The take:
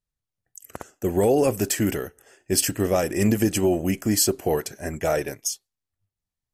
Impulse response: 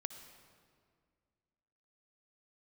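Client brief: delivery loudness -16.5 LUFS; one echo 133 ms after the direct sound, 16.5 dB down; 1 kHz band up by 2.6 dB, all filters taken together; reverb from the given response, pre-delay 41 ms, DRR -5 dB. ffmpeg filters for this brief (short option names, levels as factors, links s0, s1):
-filter_complex "[0:a]equalizer=f=1000:t=o:g=4,aecho=1:1:133:0.15,asplit=2[s0][s1];[1:a]atrim=start_sample=2205,adelay=41[s2];[s1][s2]afir=irnorm=-1:irlink=0,volume=2.24[s3];[s0][s3]amix=inputs=2:normalize=0,volume=1.06"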